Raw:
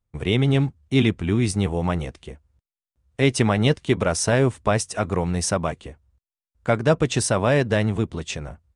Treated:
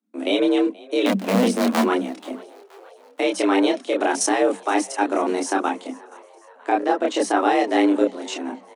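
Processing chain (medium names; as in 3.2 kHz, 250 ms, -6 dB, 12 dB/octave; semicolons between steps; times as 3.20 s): 1.06–1.83 s: cycle switcher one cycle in 2, inverted; 4.49–4.96 s: high-pass 110 Hz 24 dB/octave; 6.69–7.37 s: treble shelf 4 kHz -8.5 dB; level held to a coarse grid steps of 12 dB; chorus voices 6, 0.58 Hz, delay 28 ms, depth 2.1 ms; on a send: frequency-shifting echo 477 ms, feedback 61%, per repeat +83 Hz, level -23.5 dB; on the sum: frequency shift +190 Hz; trim +8.5 dB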